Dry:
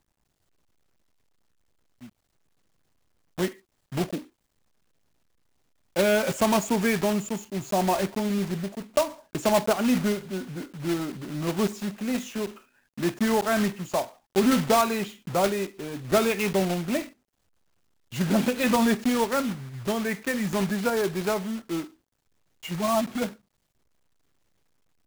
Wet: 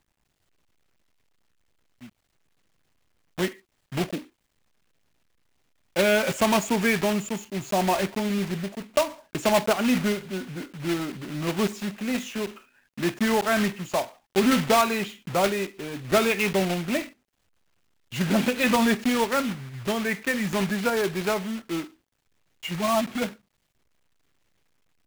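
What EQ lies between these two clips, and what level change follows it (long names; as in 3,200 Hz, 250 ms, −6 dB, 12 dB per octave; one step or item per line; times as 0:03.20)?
parametric band 2,400 Hz +5 dB 1.5 octaves
0.0 dB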